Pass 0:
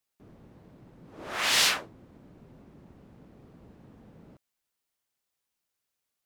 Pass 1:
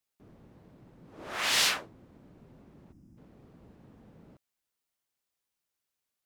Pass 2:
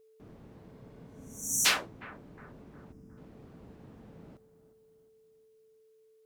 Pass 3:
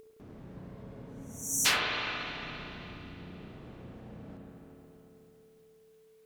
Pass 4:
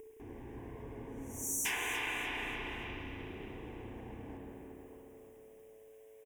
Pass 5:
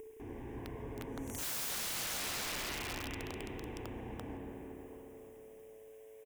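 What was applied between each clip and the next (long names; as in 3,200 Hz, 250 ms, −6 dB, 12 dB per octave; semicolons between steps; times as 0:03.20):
gain on a spectral selection 0:02.92–0:03.17, 350–4,800 Hz −16 dB; level −2.5 dB
steady tone 440 Hz −63 dBFS; healed spectral selection 0:00.75–0:01.63, 300–5,600 Hz before; bucket-brigade delay 360 ms, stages 4,096, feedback 45%, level −15 dB; level +3.5 dB
in parallel at +0.5 dB: upward compression, threshold −41 dBFS; on the sum: spring reverb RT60 3.3 s, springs 33/55 ms, chirp 35 ms, DRR −1.5 dB; level −7.5 dB
downward compressor 3 to 1, threshold −37 dBFS, peak gain reduction 11.5 dB; phaser with its sweep stopped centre 870 Hz, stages 8; on a send: echo with shifted repeats 293 ms, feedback 38%, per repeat +110 Hz, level −11 dB; on the sum: level +5 dB
wrap-around overflow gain 36 dB; level +2.5 dB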